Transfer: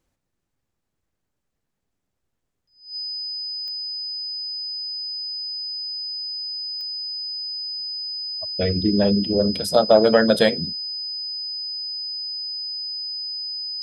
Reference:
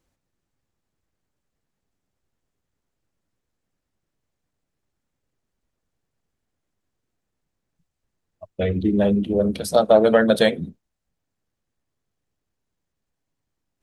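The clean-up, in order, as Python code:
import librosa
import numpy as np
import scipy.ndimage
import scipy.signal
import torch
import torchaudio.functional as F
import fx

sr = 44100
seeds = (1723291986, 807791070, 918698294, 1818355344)

y = fx.fix_declick_ar(x, sr, threshold=10.0)
y = fx.notch(y, sr, hz=5000.0, q=30.0)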